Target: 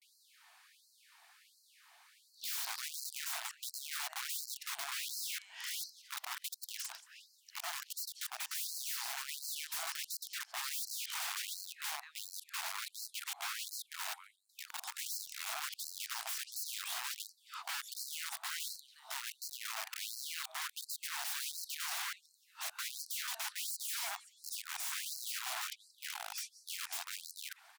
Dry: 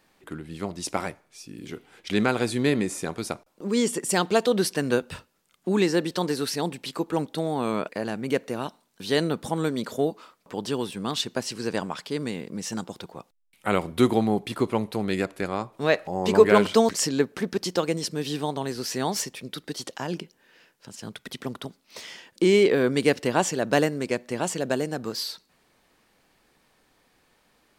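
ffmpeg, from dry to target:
ffmpeg -i in.wav -filter_complex "[0:a]areverse,acompressor=threshold=-37dB:ratio=2.5,asplit=2[link_01][link_02];[link_02]aecho=0:1:179|358|537|716:0.112|0.0527|0.0248|0.0116[link_03];[link_01][link_03]amix=inputs=2:normalize=0,aeval=exprs='(mod(70.8*val(0)+1,2)-1)/70.8':channel_layout=same,afftfilt=real='re*gte(b*sr/1024,620*pow(4100/620,0.5+0.5*sin(2*PI*1.4*pts/sr)))':imag='im*gte(b*sr/1024,620*pow(4100/620,0.5+0.5*sin(2*PI*1.4*pts/sr)))':win_size=1024:overlap=0.75,volume=3.5dB" out.wav

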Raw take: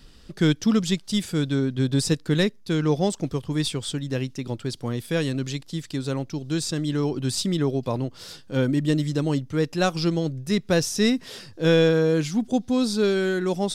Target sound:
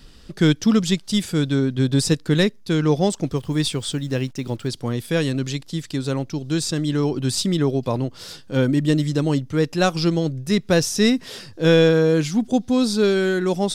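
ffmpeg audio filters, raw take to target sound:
ffmpeg -i in.wav -filter_complex "[0:a]asettb=1/sr,asplit=3[link_01][link_02][link_03];[link_01]atrim=end=3.364[link_04];[link_02]atrim=start=3.36:end=4.68,asetpts=PTS-STARTPTS,afade=type=in:duration=0.004:curve=qsin,afade=type=out:start_time=1.316:duration=0.004:curve=qsin,acrusher=bits=8:mix=0:aa=0.5[link_05];[link_03]atrim=start=4.676[link_06];[link_04][link_05]acrossfade=duration=0.004:curve1=hsin:curve2=qsin[link_07];[link_07][link_06]acrossfade=duration=0.004:curve1=qsin:curve2=hsin,volume=3.5dB" out.wav

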